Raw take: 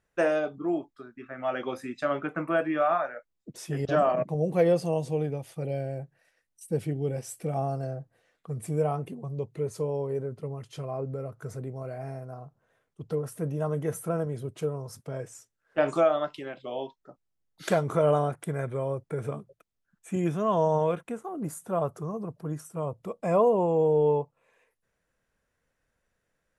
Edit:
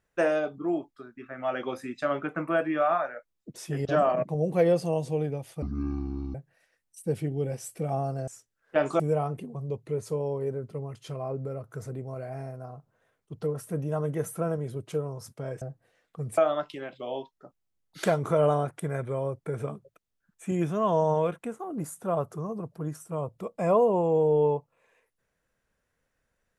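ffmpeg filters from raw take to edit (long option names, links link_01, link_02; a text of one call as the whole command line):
ffmpeg -i in.wav -filter_complex "[0:a]asplit=7[link_01][link_02][link_03][link_04][link_05][link_06][link_07];[link_01]atrim=end=5.624[link_08];[link_02]atrim=start=5.62:end=5.99,asetpts=PTS-STARTPTS,asetrate=22491,aresample=44100,atrim=end_sample=31994,asetpts=PTS-STARTPTS[link_09];[link_03]atrim=start=5.986:end=7.922[link_10];[link_04]atrim=start=15.298:end=16.022[link_11];[link_05]atrim=start=8.678:end=15.302[link_12];[link_06]atrim=start=7.918:end=8.682[link_13];[link_07]atrim=start=16.018[link_14];[link_08][link_09]acrossfade=duration=0.004:curve1=hsin:curve2=hsin[link_15];[link_15][link_10]acrossfade=duration=0.004:curve1=hsin:curve2=hsin[link_16];[link_16][link_11]acrossfade=duration=0.004:curve1=hsin:curve2=hsin[link_17];[link_17][link_12]acrossfade=duration=0.004:curve1=hsin:curve2=hsin[link_18];[link_18][link_13]acrossfade=duration=0.004:curve1=hsin:curve2=hsin[link_19];[link_19][link_14]acrossfade=duration=0.004:curve1=hsin:curve2=hsin" out.wav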